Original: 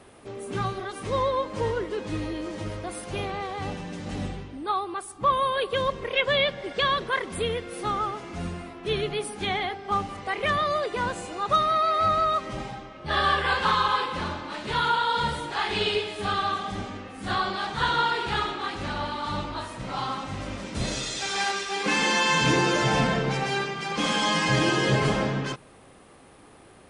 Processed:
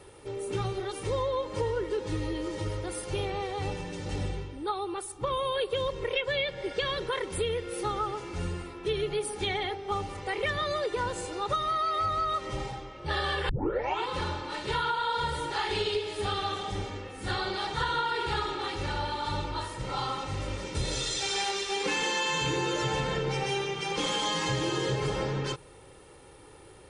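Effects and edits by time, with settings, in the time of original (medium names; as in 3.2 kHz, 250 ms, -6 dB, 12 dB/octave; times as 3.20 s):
13.49 s: tape start 0.59 s
whole clip: peaking EQ 1.2 kHz -3.5 dB 2.8 oct; comb 2.2 ms, depth 68%; compression, threshold -26 dBFS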